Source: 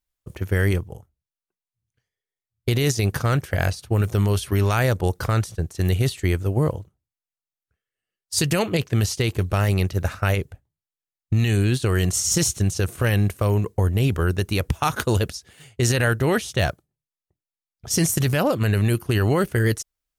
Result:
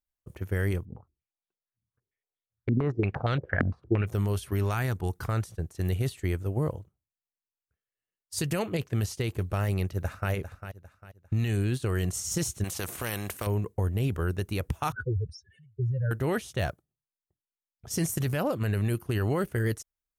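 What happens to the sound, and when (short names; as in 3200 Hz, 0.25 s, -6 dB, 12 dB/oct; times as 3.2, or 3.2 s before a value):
0.85–4.07 stepped low-pass 8.7 Hz 240–3600 Hz
4.74–5.29 bell 550 Hz -14 dB 0.36 oct
9.83–10.31 echo throw 0.4 s, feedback 35%, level -10.5 dB
12.64–13.47 spectral compressor 2:1
14.92–16.11 spectral contrast raised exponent 3.5
whole clip: bell 4600 Hz -5 dB 1.9 oct; gain -7.5 dB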